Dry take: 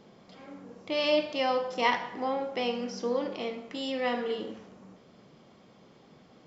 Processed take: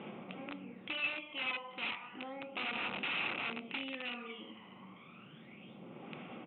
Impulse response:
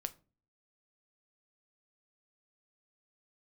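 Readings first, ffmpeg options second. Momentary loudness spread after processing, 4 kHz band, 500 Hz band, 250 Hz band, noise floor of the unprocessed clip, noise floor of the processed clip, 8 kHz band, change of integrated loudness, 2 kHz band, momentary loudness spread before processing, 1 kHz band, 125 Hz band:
19 LU, -5.5 dB, -18.5 dB, -10.5 dB, -58 dBFS, -56 dBFS, no reading, -8.5 dB, -1.5 dB, 19 LU, -12.5 dB, -3.0 dB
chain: -filter_complex "[0:a]acompressor=threshold=0.00398:ratio=2.5,aphaser=in_gain=1:out_gain=1:delay=1:decay=0.65:speed=0.32:type=sinusoidal,aeval=exprs='0.0562*(cos(1*acos(clip(val(0)/0.0562,-1,1)))-cos(1*PI/2))+0.000316*(cos(4*acos(clip(val(0)/0.0562,-1,1)))-cos(4*PI/2))+0.000562*(cos(6*acos(clip(val(0)/0.0562,-1,1)))-cos(6*PI/2))':c=same,aresample=8000,aeval=exprs='(mod(66.8*val(0)+1,2)-1)/66.8':c=same,aresample=44100,highpass=250,equalizer=f=280:t=q:w=4:g=-5,equalizer=f=440:t=q:w=4:g=-10,equalizer=f=640:t=q:w=4:g=-8,equalizer=f=1000:t=q:w=4:g=-6,equalizer=f=1700:t=q:w=4:g=-9,equalizer=f=2600:t=q:w=4:g=9,lowpass=f=2900:w=0.5412,lowpass=f=2900:w=1.3066,asplit=2[s0][s1];[1:a]atrim=start_sample=2205,asetrate=41454,aresample=44100[s2];[s1][s2]afir=irnorm=-1:irlink=0,volume=1.26[s3];[s0][s3]amix=inputs=2:normalize=0"

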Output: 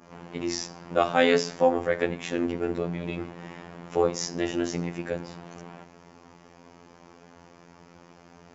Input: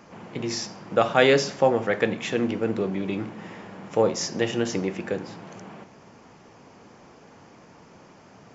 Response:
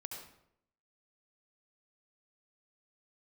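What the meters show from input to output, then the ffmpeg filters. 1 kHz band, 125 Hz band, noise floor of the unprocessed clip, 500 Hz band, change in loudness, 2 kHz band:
-1.5 dB, -3.5 dB, -51 dBFS, -2.5 dB, -2.5 dB, -3.5 dB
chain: -af "adynamicequalizer=threshold=0.01:dfrequency=3200:dqfactor=0.81:tfrequency=3200:tqfactor=0.81:attack=5:release=100:ratio=0.375:range=2:mode=cutabove:tftype=bell,afftfilt=real='hypot(re,im)*cos(PI*b)':imag='0':win_size=2048:overlap=0.75,volume=1.19"

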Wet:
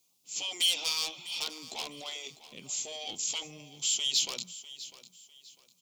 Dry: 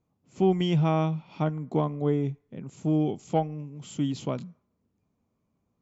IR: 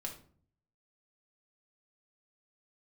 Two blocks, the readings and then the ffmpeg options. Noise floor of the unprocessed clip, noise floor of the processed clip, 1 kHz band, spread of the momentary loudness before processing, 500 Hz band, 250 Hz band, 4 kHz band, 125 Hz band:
-77 dBFS, -70 dBFS, -14.0 dB, 14 LU, -19.5 dB, -26.0 dB, +14.5 dB, -31.0 dB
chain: -filter_complex "[0:a]afftfilt=real='re*lt(hypot(re,im),0.178)':imag='im*lt(hypot(re,im),0.178)':win_size=1024:overlap=0.75,acrossover=split=750[s0][s1];[s0]highpass=f=550:p=1[s2];[s1]aeval=exprs='0.0188*(abs(mod(val(0)/0.0188+3,4)-2)-1)':c=same[s3];[s2][s3]amix=inputs=2:normalize=0,acrossover=split=5600[s4][s5];[s5]acompressor=threshold=0.00178:ratio=4:attack=1:release=60[s6];[s4][s6]amix=inputs=2:normalize=0,asoftclip=type=tanh:threshold=0.0178,aexciter=amount=13.9:drive=6.1:freq=2600,asplit=2[s7][s8];[s8]aecho=0:1:650|1300|1950:0.158|0.0475|0.0143[s9];[s7][s9]amix=inputs=2:normalize=0,volume=0.668"

